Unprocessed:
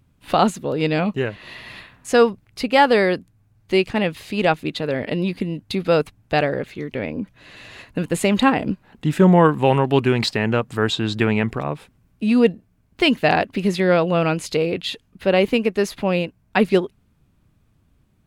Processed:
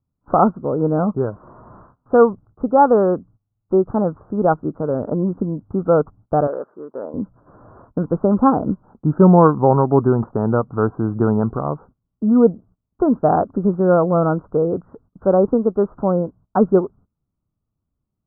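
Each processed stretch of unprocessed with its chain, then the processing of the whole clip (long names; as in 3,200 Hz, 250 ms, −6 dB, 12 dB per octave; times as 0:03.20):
0:06.47–0:07.14: band-pass filter 490–5,300 Hz + notch filter 760 Hz, Q 11
whole clip: noise gate −45 dBFS, range −20 dB; Butterworth low-pass 1,400 Hz 96 dB per octave; level +2.5 dB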